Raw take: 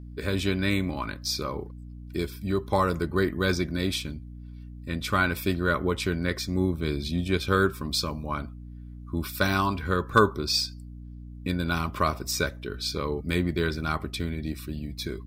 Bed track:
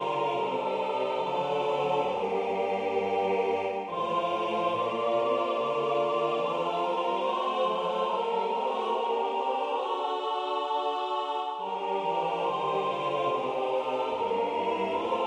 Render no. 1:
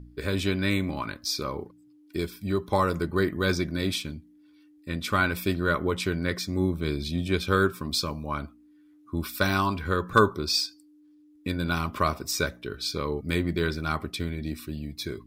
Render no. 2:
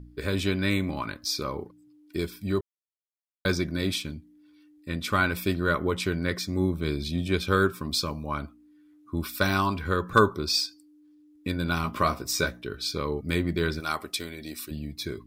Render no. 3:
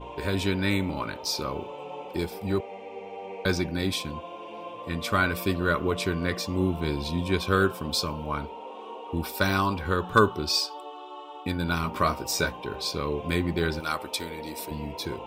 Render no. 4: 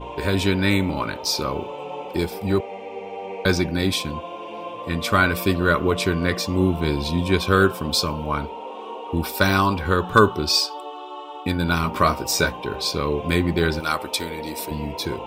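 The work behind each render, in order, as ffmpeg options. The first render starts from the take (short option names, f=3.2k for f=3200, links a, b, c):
-af "bandreject=f=60:t=h:w=4,bandreject=f=120:t=h:w=4,bandreject=f=180:t=h:w=4,bandreject=f=240:t=h:w=4"
-filter_complex "[0:a]asettb=1/sr,asplit=3[a][b][c];[a]atrim=end=11.824[d];[b]atrim=start=11.82:end=12.62,asetpts=PTS-STARTPTS,afade=t=in:d=0.004:c=qsin,afade=t=out:st=0.796:d=0.004:c=qsin,asplit=2[e][f];[f]adelay=17,volume=-7dB[g];[e][g]amix=inputs=2:normalize=0,atrim=end_sample=35280[h];[c]atrim=start=12.616[i];[d][h]acrossfade=d=0.004:c1=hsin:c2=qsin[j];[j][i]acrossfade=d=0.004:c1=qsin:c2=hsin,asettb=1/sr,asplit=3[k][l][m];[k]atrim=end=13.804[n];[l]atrim=start=13.8:end=14.71,asetpts=PTS-STARTPTS,afade=t=in:d=0.004:c=qsin,afade=t=out:st=0.906:d=0.004:c=qsin,bass=f=250:g=-14,treble=f=4k:g=8[o];[m]atrim=start=14.706[p];[n][o]acrossfade=d=0.004:c1=hsin:c2=qsin[q];[q][p]acrossfade=d=0.004:c1=qsin:c2=hsin,asplit=3[r][s][t];[r]atrim=end=2.61,asetpts=PTS-STARTPTS,afade=t=out:st=2.606:d=0.004:c=hsin[u];[s]atrim=start=2.61:end=3.45,asetpts=PTS-STARTPTS,volume=0[v];[t]atrim=start=3.45,asetpts=PTS-STARTPTS,afade=t=in:d=0.004:c=hsin[w];[u][v][w]concat=n=3:v=0:a=1"
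-filter_complex "[1:a]volume=-11.5dB[a];[0:a][a]amix=inputs=2:normalize=0"
-af "volume=6dB,alimiter=limit=-2dB:level=0:latency=1"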